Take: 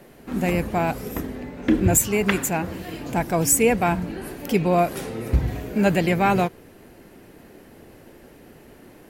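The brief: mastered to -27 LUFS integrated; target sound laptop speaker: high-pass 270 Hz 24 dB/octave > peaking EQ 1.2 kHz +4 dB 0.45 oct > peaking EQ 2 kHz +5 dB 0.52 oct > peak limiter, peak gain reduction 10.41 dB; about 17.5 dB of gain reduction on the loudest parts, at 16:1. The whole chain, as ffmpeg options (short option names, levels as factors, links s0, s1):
-af "acompressor=threshold=0.0282:ratio=16,highpass=f=270:w=0.5412,highpass=f=270:w=1.3066,equalizer=f=1200:t=o:w=0.45:g=4,equalizer=f=2000:t=o:w=0.52:g=5,volume=4.22,alimiter=limit=0.178:level=0:latency=1"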